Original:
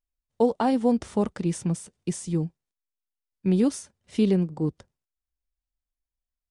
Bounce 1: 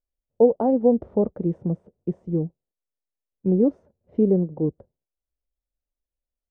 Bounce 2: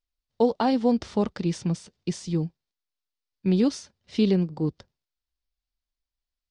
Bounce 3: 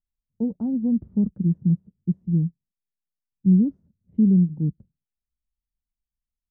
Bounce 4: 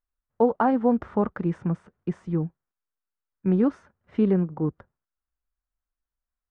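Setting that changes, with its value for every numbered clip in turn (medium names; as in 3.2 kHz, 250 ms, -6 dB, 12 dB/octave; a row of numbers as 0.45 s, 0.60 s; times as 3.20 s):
resonant low-pass, frequency: 550 Hz, 4.7 kHz, 190 Hz, 1.4 kHz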